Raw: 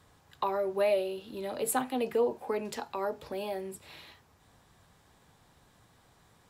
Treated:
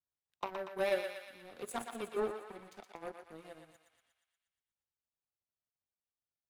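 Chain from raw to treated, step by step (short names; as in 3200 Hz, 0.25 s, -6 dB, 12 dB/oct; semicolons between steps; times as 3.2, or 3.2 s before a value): gliding pitch shift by -5.5 st starting unshifted; power-law curve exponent 2; thinning echo 0.119 s, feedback 64%, high-pass 740 Hz, level -5 dB; gain -2 dB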